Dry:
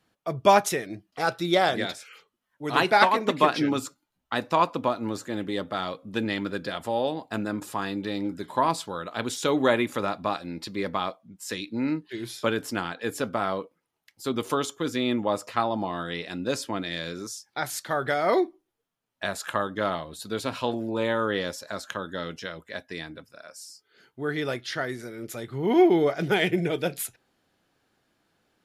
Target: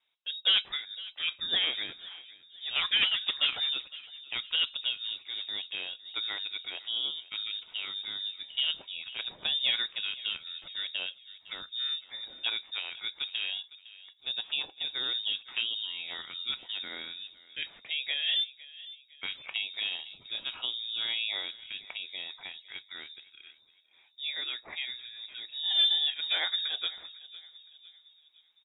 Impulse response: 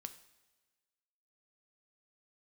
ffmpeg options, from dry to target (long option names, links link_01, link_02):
-filter_complex "[0:a]volume=11.5dB,asoftclip=hard,volume=-11.5dB,asplit=2[link_01][link_02];[link_02]adelay=508,lowpass=frequency=1900:poles=1,volume=-17dB,asplit=2[link_03][link_04];[link_04]adelay=508,lowpass=frequency=1900:poles=1,volume=0.51,asplit=2[link_05][link_06];[link_06]adelay=508,lowpass=frequency=1900:poles=1,volume=0.51,asplit=2[link_07][link_08];[link_08]adelay=508,lowpass=frequency=1900:poles=1,volume=0.51[link_09];[link_01][link_03][link_05][link_07][link_09]amix=inputs=5:normalize=0,lowpass=frequency=3300:width_type=q:width=0.5098,lowpass=frequency=3300:width_type=q:width=0.6013,lowpass=frequency=3300:width_type=q:width=0.9,lowpass=frequency=3300:width_type=q:width=2.563,afreqshift=-3900,volume=-7dB"